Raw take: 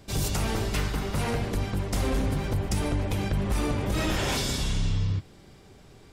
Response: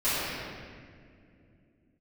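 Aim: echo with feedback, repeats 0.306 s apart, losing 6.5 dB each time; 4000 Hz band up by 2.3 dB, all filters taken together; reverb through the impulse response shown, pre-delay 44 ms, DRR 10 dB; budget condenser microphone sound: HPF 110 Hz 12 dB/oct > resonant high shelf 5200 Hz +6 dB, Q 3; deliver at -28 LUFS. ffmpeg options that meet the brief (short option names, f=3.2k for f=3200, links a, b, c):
-filter_complex "[0:a]equalizer=f=4k:t=o:g=4.5,aecho=1:1:306|612|918|1224|1530|1836:0.473|0.222|0.105|0.0491|0.0231|0.0109,asplit=2[a][b];[1:a]atrim=start_sample=2205,adelay=44[c];[b][c]afir=irnorm=-1:irlink=0,volume=-24dB[d];[a][d]amix=inputs=2:normalize=0,highpass=110,highshelf=f=5.2k:t=q:w=3:g=6,volume=-2dB"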